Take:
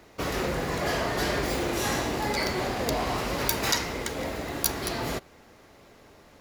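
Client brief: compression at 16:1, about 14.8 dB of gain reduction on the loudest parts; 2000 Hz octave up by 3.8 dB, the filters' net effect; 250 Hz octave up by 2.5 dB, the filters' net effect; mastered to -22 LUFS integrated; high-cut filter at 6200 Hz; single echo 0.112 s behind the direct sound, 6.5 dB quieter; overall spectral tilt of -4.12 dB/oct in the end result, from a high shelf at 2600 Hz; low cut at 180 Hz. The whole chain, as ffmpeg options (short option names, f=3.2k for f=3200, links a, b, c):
-af "highpass=180,lowpass=6.2k,equalizer=f=250:t=o:g=4.5,equalizer=f=2k:t=o:g=6.5,highshelf=f=2.6k:g=-5,acompressor=threshold=-37dB:ratio=16,aecho=1:1:112:0.473,volume=17.5dB"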